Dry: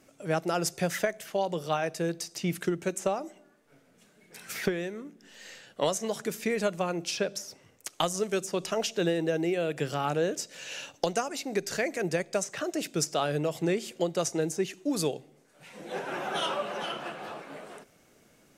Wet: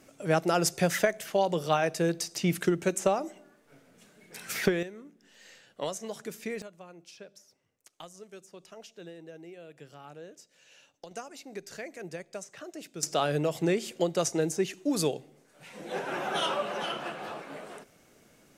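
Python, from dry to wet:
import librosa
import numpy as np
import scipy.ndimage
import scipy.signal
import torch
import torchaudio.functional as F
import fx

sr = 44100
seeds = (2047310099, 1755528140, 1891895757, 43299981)

y = fx.gain(x, sr, db=fx.steps((0.0, 3.0), (4.83, -6.5), (6.62, -18.5), (11.11, -11.0), (13.03, 1.0)))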